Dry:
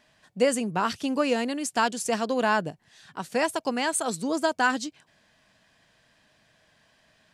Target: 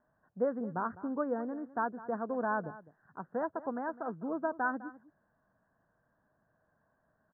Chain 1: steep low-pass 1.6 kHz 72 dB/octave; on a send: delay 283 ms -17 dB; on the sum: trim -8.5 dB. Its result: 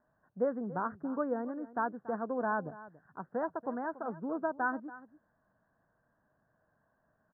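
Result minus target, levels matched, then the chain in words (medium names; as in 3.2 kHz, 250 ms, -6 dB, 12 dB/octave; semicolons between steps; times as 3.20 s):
echo 78 ms late
steep low-pass 1.6 kHz 72 dB/octave; on a send: delay 205 ms -17 dB; on the sum: trim -8.5 dB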